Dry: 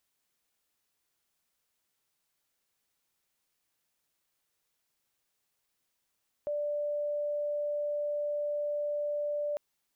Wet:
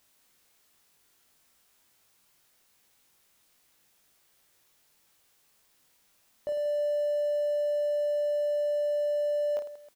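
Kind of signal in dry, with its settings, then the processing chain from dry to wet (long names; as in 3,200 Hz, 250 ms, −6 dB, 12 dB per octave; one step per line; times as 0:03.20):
tone sine 588 Hz −29.5 dBFS 3.10 s
mu-law and A-law mismatch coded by mu
on a send: reverse bouncing-ball delay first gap 20 ms, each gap 1.6×, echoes 5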